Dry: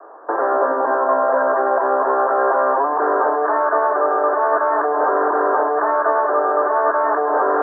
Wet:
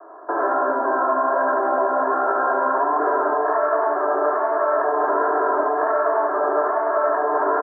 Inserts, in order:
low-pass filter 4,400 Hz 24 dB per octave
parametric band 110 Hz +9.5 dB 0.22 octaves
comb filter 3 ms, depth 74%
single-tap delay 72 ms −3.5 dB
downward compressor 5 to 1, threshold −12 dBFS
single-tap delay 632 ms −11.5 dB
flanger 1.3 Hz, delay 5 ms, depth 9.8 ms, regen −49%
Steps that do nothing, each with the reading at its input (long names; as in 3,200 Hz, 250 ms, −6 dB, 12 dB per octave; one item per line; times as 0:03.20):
low-pass filter 4,400 Hz: nothing at its input above 1,800 Hz
parametric band 110 Hz: nothing at its input below 250 Hz